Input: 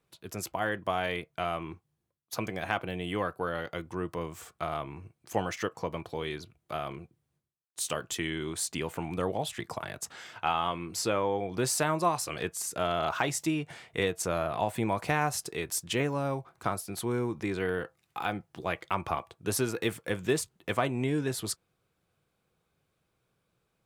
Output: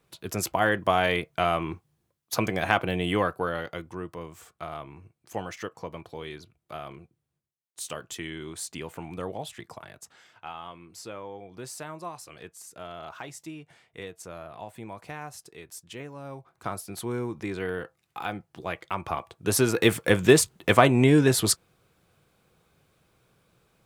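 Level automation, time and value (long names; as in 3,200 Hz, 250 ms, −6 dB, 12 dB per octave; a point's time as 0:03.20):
0:03.10 +7.5 dB
0:04.15 −3.5 dB
0:09.40 −3.5 dB
0:10.33 −11 dB
0:16.14 −11 dB
0:16.78 −0.5 dB
0:19.00 −0.5 dB
0:19.96 +11 dB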